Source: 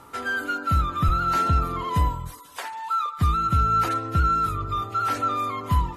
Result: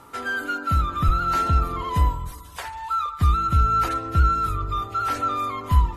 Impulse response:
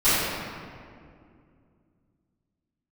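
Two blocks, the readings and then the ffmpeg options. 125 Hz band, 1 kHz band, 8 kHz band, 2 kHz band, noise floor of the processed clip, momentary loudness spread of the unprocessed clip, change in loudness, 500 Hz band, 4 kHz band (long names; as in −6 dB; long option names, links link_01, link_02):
+2.0 dB, 0.0 dB, 0.0 dB, 0.0 dB, −41 dBFS, 7 LU, +1.0 dB, 0.0 dB, 0.0 dB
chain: -filter_complex "[0:a]asubboost=boost=3.5:cutoff=71,asplit=2[link_01][link_02];[1:a]atrim=start_sample=2205[link_03];[link_02][link_03]afir=irnorm=-1:irlink=0,volume=-39dB[link_04];[link_01][link_04]amix=inputs=2:normalize=0"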